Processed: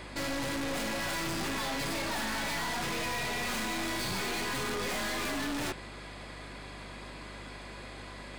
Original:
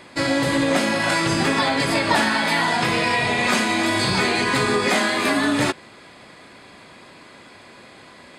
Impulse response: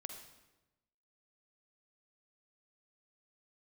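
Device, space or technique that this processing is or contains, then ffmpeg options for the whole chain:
valve amplifier with mains hum: -af "aeval=exprs='(tanh(44.7*val(0)+0.3)-tanh(0.3))/44.7':c=same,aeval=exprs='val(0)+0.00398*(sin(2*PI*50*n/s)+sin(2*PI*2*50*n/s)/2+sin(2*PI*3*50*n/s)/3+sin(2*PI*4*50*n/s)/4+sin(2*PI*5*50*n/s)/5)':c=same"

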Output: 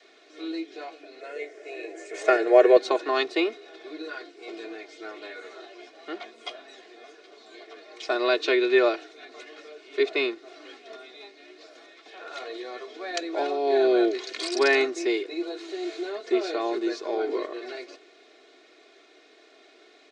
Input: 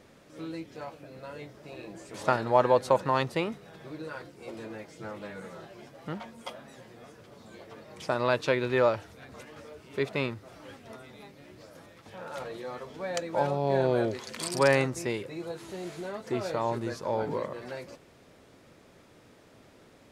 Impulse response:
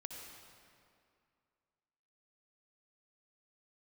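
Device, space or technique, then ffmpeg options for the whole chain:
phone speaker on a table: -filter_complex "[0:a]adynamicequalizer=threshold=0.00708:dfrequency=340:dqfactor=2.1:tfrequency=340:tqfactor=2.1:attack=5:release=100:ratio=0.375:range=3.5:mode=boostabove:tftype=bell,highpass=f=360:w=0.5412,highpass=f=360:w=1.3066,equalizer=f=960:t=q:w=4:g=-9,equalizer=f=2.3k:t=q:w=4:g=4,equalizer=f=3.9k:t=q:w=4:g=7,lowpass=f=6.6k:w=0.5412,lowpass=f=6.6k:w=1.3066,aecho=1:1:2.8:0.88,asettb=1/sr,asplit=3[a][b][c];[a]atrim=end=1.214[d];[b]atrim=start=1.21:end=2.77,asetpts=PTS-STARTPTS,afade=t=in:d=0.004:c=qsin,afade=t=out:st=1.556:d=0.004:c=qsin,equalizer=f=125:t=o:w=1:g=-6,equalizer=f=250:t=o:w=1:g=-5,equalizer=f=500:t=o:w=1:g=11,equalizer=f=1k:t=o:w=1:g=-7,equalizer=f=2k:t=o:w=1:g=8,equalizer=f=4k:t=o:w=1:g=-11,equalizer=f=8k:t=o:w=1:g=9[e];[c]atrim=start=2.766[f];[d][e]acrossfade=d=0.004:c1=hsin:c2=qsin[g];[g][f]acrossfade=d=0.004:c1=qsin:c2=hsin,volume=1dB"

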